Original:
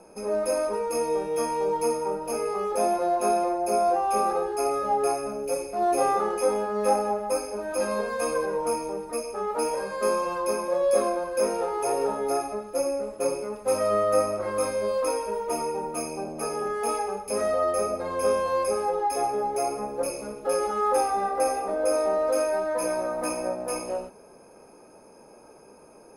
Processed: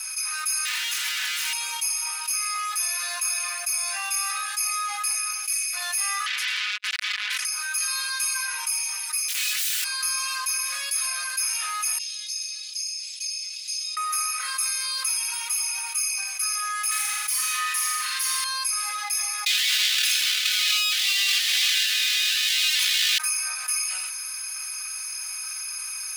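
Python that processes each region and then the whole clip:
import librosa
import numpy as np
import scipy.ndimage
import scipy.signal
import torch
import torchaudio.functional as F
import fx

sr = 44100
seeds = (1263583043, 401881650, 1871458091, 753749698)

y = fx.chain(x, sr, fx.clip_1bit(),
    fx.lowpass(hz=1700.0, slope=6),
    fx.low_shelf(hz=260.0, db=-11.0), at=(0.65, 1.53))
y = fx.chain(y, sr, fx.air_absorb(metres=59.0),
    fx.clip_hard(threshold_db=-24.0),
    fx.transformer_sat(knee_hz=1800.0), at=(6.26, 7.45))
y = fx.chain(y, sr, fx.overflow_wrap(gain_db=28.0),
    fx.detune_double(cents=32), at=(9.28, 9.84))
y = fx.chain(y, sr, fx.cheby2_bandstop(low_hz=120.0, high_hz=780.0, order=4, stop_db=80),
    fx.air_absorb(metres=160.0), at=(11.98, 13.97))
y = fx.chain(y, sr, fx.lower_of_two(delay_ms=4.9),
    fx.room_flutter(wall_m=7.3, rt60_s=0.68), at=(16.91, 18.44))
y = fx.chain(y, sr, fx.halfwave_hold(),
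    fx.peak_eq(hz=3500.0, db=13.0, octaves=1.7),
    fx.over_compress(threshold_db=-23.0, ratio=-1.0), at=(19.46, 23.18))
y = scipy.signal.sosfilt(scipy.signal.bessel(6, 2800.0, 'highpass', norm='mag', fs=sr, output='sos'), y)
y = y + 0.94 * np.pad(y, (int(4.0 * sr / 1000.0), 0))[:len(y)]
y = fx.env_flatten(y, sr, amount_pct=70)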